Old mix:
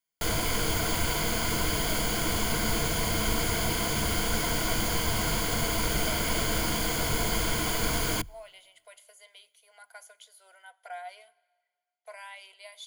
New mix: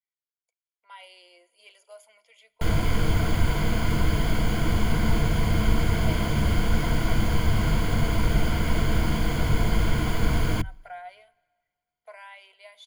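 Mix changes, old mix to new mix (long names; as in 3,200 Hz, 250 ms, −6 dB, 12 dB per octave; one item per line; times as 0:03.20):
background: entry +2.40 s
master: add bass and treble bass +10 dB, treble −11 dB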